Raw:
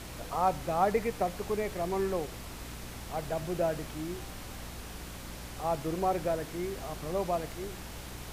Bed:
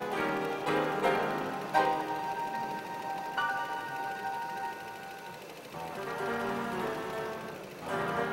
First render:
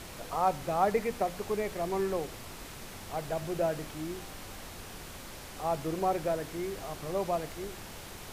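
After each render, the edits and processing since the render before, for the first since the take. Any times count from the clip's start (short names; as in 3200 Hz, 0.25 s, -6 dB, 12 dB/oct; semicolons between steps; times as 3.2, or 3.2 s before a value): notches 60/120/180/240/300 Hz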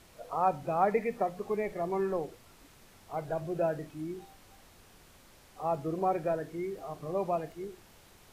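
noise print and reduce 13 dB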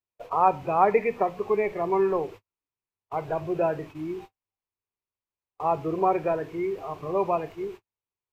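gate -47 dBFS, range -47 dB; fifteen-band EQ 100 Hz +10 dB, 400 Hz +8 dB, 1000 Hz +11 dB, 2500 Hz +10 dB, 10000 Hz -8 dB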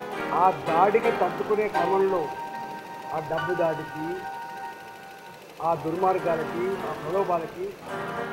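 add bed +0.5 dB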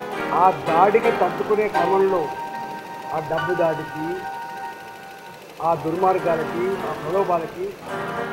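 gain +4.5 dB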